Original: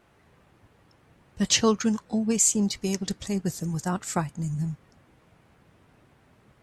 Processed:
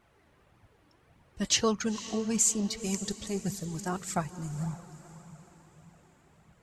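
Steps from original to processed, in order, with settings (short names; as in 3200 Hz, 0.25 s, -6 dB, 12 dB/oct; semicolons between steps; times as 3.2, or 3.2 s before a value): diffused feedback echo 0.506 s, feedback 46%, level -14 dB; flange 1.7 Hz, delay 0.8 ms, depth 2.8 ms, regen +36%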